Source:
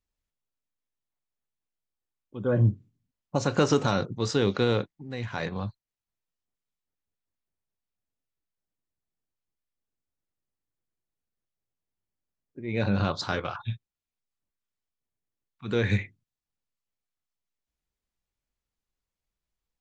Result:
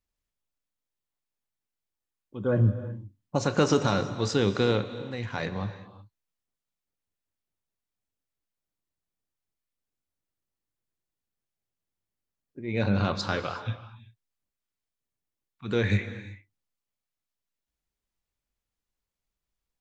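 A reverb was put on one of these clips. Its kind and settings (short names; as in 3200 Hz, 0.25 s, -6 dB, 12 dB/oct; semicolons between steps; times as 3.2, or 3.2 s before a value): non-linear reverb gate 0.4 s flat, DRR 11 dB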